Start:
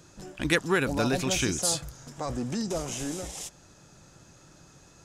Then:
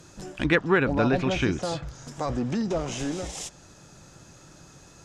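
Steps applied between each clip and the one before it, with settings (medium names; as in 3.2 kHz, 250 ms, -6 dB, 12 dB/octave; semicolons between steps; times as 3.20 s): low-pass that closes with the level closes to 2.4 kHz, closed at -25.5 dBFS; trim +4 dB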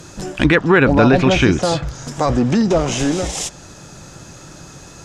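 loudness maximiser +13 dB; trim -1 dB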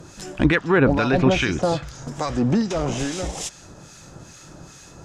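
harmonic tremolo 2.4 Hz, depth 70%, crossover 1.3 kHz; trim -2 dB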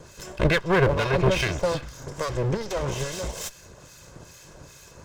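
comb filter that takes the minimum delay 1.9 ms; trim -2 dB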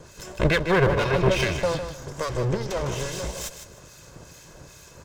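feedback delay 155 ms, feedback 23%, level -9.5 dB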